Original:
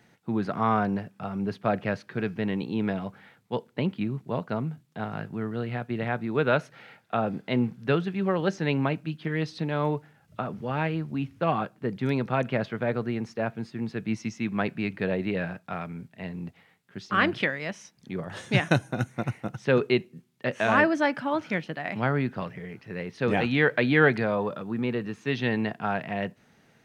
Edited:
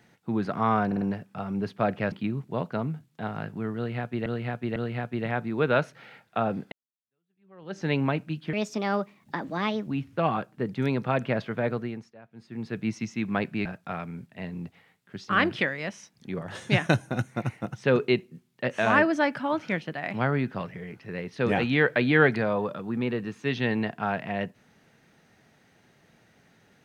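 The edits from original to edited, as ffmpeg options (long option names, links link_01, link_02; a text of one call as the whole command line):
ffmpeg -i in.wav -filter_complex "[0:a]asplit=13[link_01][link_02][link_03][link_04][link_05][link_06][link_07][link_08][link_09][link_10][link_11][link_12][link_13];[link_01]atrim=end=0.912[link_14];[link_02]atrim=start=0.858:end=0.912[link_15];[link_03]atrim=start=0.858:end=0.912[link_16];[link_04]atrim=start=0.858:end=1.972[link_17];[link_05]atrim=start=3.888:end=6.032[link_18];[link_06]atrim=start=5.528:end=6.032[link_19];[link_07]atrim=start=5.528:end=7.49,asetpts=PTS-STARTPTS,afade=type=out:start_time=1.958:duration=0.004:curve=hsin[link_20];[link_08]atrim=start=7.49:end=9.304,asetpts=PTS-STARTPTS,afade=type=in:duration=1.11:curve=exp[link_21];[link_09]atrim=start=9.3:end=11.1,asetpts=PTS-STARTPTS,asetrate=59535,aresample=44100[link_22];[link_10]atrim=start=11.096:end=13.38,asetpts=PTS-STARTPTS,afade=type=out:start_time=1.854:duration=0.43:silence=0.0891251[link_23];[link_11]atrim=start=13.38:end=13.55,asetpts=PTS-STARTPTS,volume=-21dB[link_24];[link_12]atrim=start=13.55:end=14.892,asetpts=PTS-STARTPTS,afade=type=in:duration=0.43:silence=0.0891251[link_25];[link_13]atrim=start=15.468[link_26];[link_14][link_15]acrossfade=duration=0.004:curve1=hsin:curve2=hsin[link_27];[link_27][link_16]acrossfade=duration=0.004:curve1=hsin:curve2=hsin[link_28];[link_28][link_17]acrossfade=duration=0.004:curve1=hsin:curve2=hsin[link_29];[link_29][link_18]acrossfade=duration=0.004:curve1=hsin:curve2=hsin[link_30];[link_30][link_19]acrossfade=duration=0.004:curve1=hsin:curve2=hsin[link_31];[link_20][link_21]concat=n=2:v=0:a=1[link_32];[link_31][link_32]acrossfade=duration=0.004:curve1=hsin:curve2=hsin[link_33];[link_33][link_22]acrossfade=duration=0.004:curve1=hsin:curve2=hsin[link_34];[link_23][link_24][link_25]concat=n=3:v=0:a=1[link_35];[link_34][link_35]acrossfade=duration=0.004:curve1=hsin:curve2=hsin[link_36];[link_36][link_26]acrossfade=duration=0.004:curve1=hsin:curve2=hsin" out.wav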